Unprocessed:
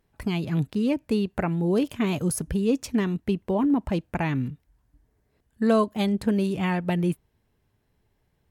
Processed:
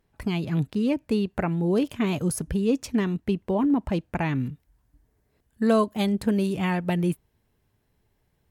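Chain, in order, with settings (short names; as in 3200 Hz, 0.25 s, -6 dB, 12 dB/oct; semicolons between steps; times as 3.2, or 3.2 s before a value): high shelf 8200 Hz -2.5 dB, from 4.4 s +4.5 dB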